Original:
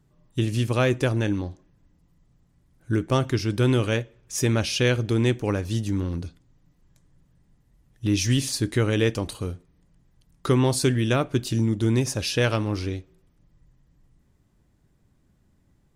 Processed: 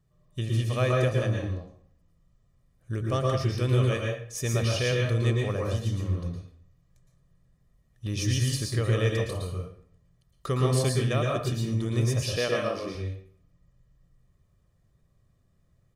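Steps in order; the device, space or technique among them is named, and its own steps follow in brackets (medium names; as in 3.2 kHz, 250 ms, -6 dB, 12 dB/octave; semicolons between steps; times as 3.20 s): microphone above a desk (comb 1.7 ms, depth 57%; reverberation RT60 0.55 s, pre-delay 108 ms, DRR -0.5 dB); 12.37–12.95 s: resonant low shelf 150 Hz -11.5 dB, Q 1.5; trim -8 dB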